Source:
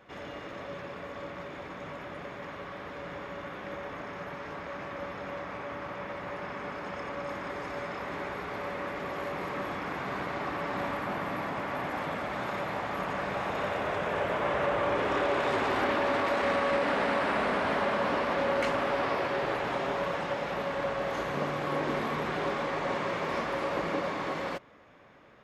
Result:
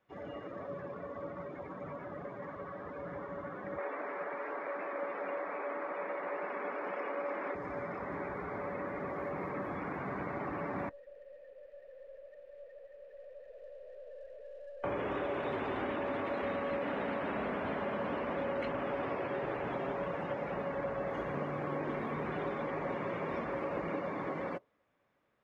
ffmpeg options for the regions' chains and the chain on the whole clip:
ffmpeg -i in.wav -filter_complex "[0:a]asettb=1/sr,asplit=3[link_01][link_02][link_03];[link_01]atrim=end=3.784[link_04];[link_02]atrim=start=3.78:end=7.55,asetpts=PTS-STARTPTS,afade=type=in:duration=0.004:curve=qsin,afade=type=out:start_time=3.766:duration=0.004:curve=qsin,acontrast=52,highpass=400,lowpass=4200[link_05];[link_03]atrim=start=7.546[link_06];[link_04][link_05]acrossfade=duration=0.004:curve1=hsin:curve2=qsin[link_07];[link_07][link_06]acrossfade=duration=0.004:curve1=qsin:curve2=hsin,asettb=1/sr,asplit=3[link_08][link_09][link_10];[link_08]atrim=end=10.894[link_11];[link_09]atrim=start=10.89:end=14.84,asetpts=PTS-STARTPTS,afade=type=in:duration=0.004:curve=qsin,afade=type=out:start_time=3.946:duration=0.004:curve=qsin,asplit=3[link_12][link_13][link_14];[link_12]bandpass=frequency=530:width_type=q:width=8,volume=0dB[link_15];[link_13]bandpass=frequency=1840:width_type=q:width=8,volume=-6dB[link_16];[link_14]bandpass=frequency=2480:width_type=q:width=8,volume=-9dB[link_17];[link_15][link_16][link_17]amix=inputs=3:normalize=0,aeval=exprs='(tanh(178*val(0)+0.45)-tanh(0.45))/178':channel_layout=same[link_18];[link_10]atrim=start=14.836[link_19];[link_11][link_18]acrossfade=duration=0.004:curve1=hsin:curve2=qsin[link_20];[link_20][link_19]acrossfade=duration=0.004:curve1=qsin:curve2=hsin,afftdn=noise_reduction=20:noise_floor=-39,acrossover=split=540|3500[link_21][link_22][link_23];[link_21]acompressor=threshold=-36dB:ratio=4[link_24];[link_22]acompressor=threshold=-41dB:ratio=4[link_25];[link_23]acompressor=threshold=-57dB:ratio=4[link_26];[link_24][link_25][link_26]amix=inputs=3:normalize=0" out.wav

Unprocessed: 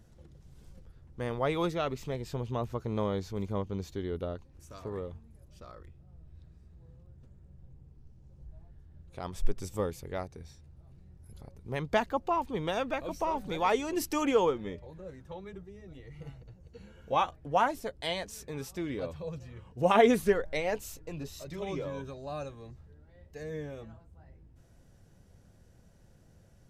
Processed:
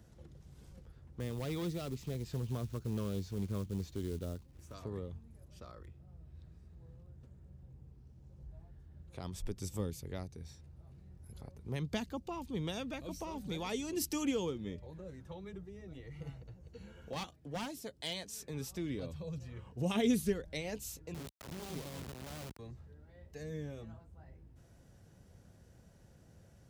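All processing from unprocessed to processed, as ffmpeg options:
ffmpeg -i in.wav -filter_complex "[0:a]asettb=1/sr,asplit=3[link_01][link_02][link_03];[link_01]atrim=end=1.204[link_04];[link_02]atrim=start=1.2:end=4.74,asetpts=PTS-STARTPTS,afade=type=in:duration=0.004:curve=qsin,afade=type=out:start_time=3.536:duration=0.004:curve=qsin,highshelf=frequency=3900:gain=-7,volume=28.5dB,asoftclip=hard,volume=-28.5dB,acrusher=bits=5:mode=log:mix=0:aa=0.000001[link_05];[link_03]atrim=start=4.736[link_06];[link_04][link_05]acrossfade=duration=0.004:curve1=hsin:curve2=qsin[link_07];[link_07][link_06]acrossfade=duration=0.004:curve1=qsin:curve2=hsin,asettb=1/sr,asplit=3[link_08][link_09][link_10];[link_08]atrim=end=17.094[link_11];[link_09]atrim=start=17.09:end=18.48,asetpts=PTS-STARTPTS,afade=type=in:duration=0.004:curve=qsin,afade=type=out:start_time=1.386:duration=0.004:curve=qsin,highpass=frequency=220:poles=1,aeval=exprs='clip(val(0),-1,0.0501)':channel_layout=same[link_12];[link_10]atrim=start=18.476[link_13];[link_11][link_12]acrossfade=duration=0.004:curve1=hsin:curve2=qsin[link_14];[link_14][link_13]acrossfade=duration=0.004:curve1=qsin:curve2=hsin,asettb=1/sr,asplit=3[link_15][link_16][link_17];[link_15]atrim=end=21.144[link_18];[link_16]atrim=start=21.14:end=22.59,asetpts=PTS-STARTPTS,afade=type=in:duration=0.004:curve=qsin,afade=type=out:start_time=1.446:duration=0.004:curve=qsin,lowpass=frequency=1100:poles=1,asubboost=boost=2.5:cutoff=240,acrusher=bits=4:dc=4:mix=0:aa=0.000001[link_19];[link_17]atrim=start=22.586[link_20];[link_18][link_19]acrossfade=duration=0.004:curve1=hsin:curve2=qsin[link_21];[link_21][link_20]acrossfade=duration=0.004:curve1=qsin:curve2=hsin,acrossover=split=310|3000[link_22][link_23][link_24];[link_23]acompressor=threshold=-52dB:ratio=2.5[link_25];[link_22][link_25][link_24]amix=inputs=3:normalize=0,highpass=43" out.wav

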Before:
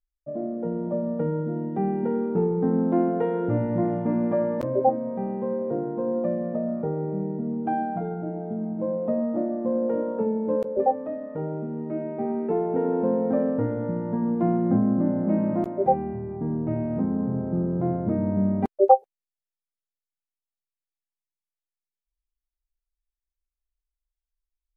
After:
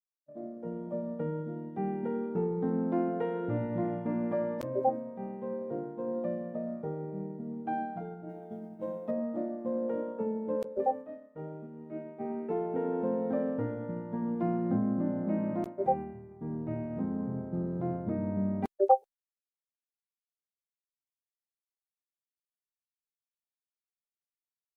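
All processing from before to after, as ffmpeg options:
ffmpeg -i in.wav -filter_complex "[0:a]asettb=1/sr,asplit=3[link_01][link_02][link_03];[link_01]atrim=end=8.294[link_04];[link_02]atrim=start=8.29:end=9.11,asetpts=PTS-STARTPTS,afade=type=in:duration=0.004:curve=qsin,afade=type=out:start_time=0.816:duration=0.004:curve=qsin,highshelf=frequency=2000:gain=12,bandreject=frequency=1100:width=17,asplit=2[link_05][link_06];[link_06]adelay=43,volume=-12dB[link_07];[link_05][link_07]amix=inputs=2:normalize=0,atrim=end_sample=36162[link_08];[link_03]atrim=start=9.106[link_09];[link_04][link_08]acrossfade=duration=0.004:curve1=hsin:curve2=qsin[link_10];[link_10][link_09]acrossfade=duration=0.004:curve1=qsin:curve2=hsin,agate=range=-33dB:threshold=-25dB:ratio=3:detection=peak,highshelf=frequency=2200:gain=10.5,volume=-8dB" out.wav

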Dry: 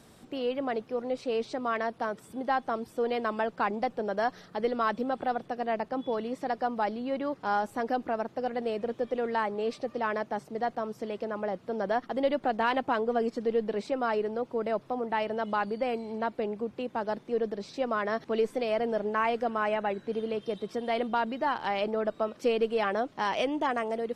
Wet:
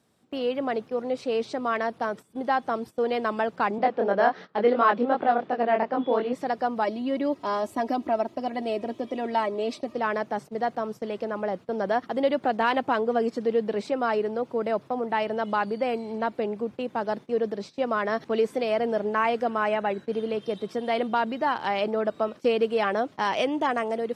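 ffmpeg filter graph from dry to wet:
ffmpeg -i in.wav -filter_complex "[0:a]asettb=1/sr,asplit=3[link_01][link_02][link_03];[link_01]atrim=end=3.784[link_04];[link_02]atrim=start=3.78:end=6.33,asetpts=PTS-STARTPTS,afade=type=in:duration=0.004:curve=qsin,afade=type=out:start_time=2.546:duration=0.004:curve=qsin,acontrast=77,flanger=delay=20:depth=5.2:speed=2.8,highpass=210,lowpass=3100[link_05];[link_03]atrim=start=6.326[link_06];[link_04][link_05]acrossfade=duration=0.004:curve1=hsin:curve2=qsin[link_07];[link_07][link_06]acrossfade=duration=0.004:curve1=qsin:curve2=hsin,asettb=1/sr,asplit=3[link_08][link_09][link_10];[link_08]atrim=end=6.844[link_11];[link_09]atrim=start=6.84:end=9.95,asetpts=PTS-STARTPTS,afade=type=in:duration=0.004:curve=qsin,afade=type=out:start_time=3.106:duration=0.004:curve=qsin,equalizer=frequency=1500:width=3.7:gain=-9,aecho=1:1:3.1:0.68,atrim=end_sample=137151[link_12];[link_10]atrim=start=9.946[link_13];[link_11][link_12]acrossfade=duration=0.004:curve1=hsin:curve2=qsin[link_14];[link_14][link_13]acrossfade=duration=0.004:curve1=qsin:curve2=hsin,highpass=79,agate=range=-16dB:threshold=-41dB:ratio=16:detection=peak,volume=3.5dB" out.wav

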